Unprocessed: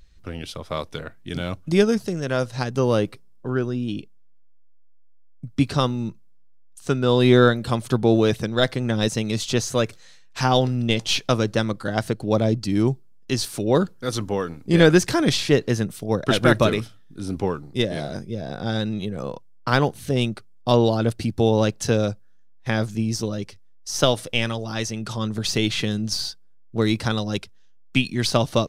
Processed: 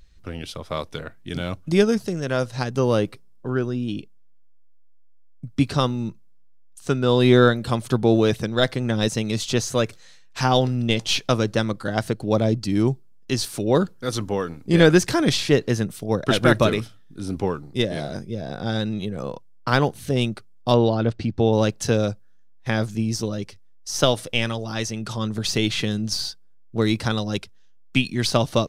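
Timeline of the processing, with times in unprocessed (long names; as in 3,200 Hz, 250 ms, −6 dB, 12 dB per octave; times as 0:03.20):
0:20.74–0:21.53: high-frequency loss of the air 130 metres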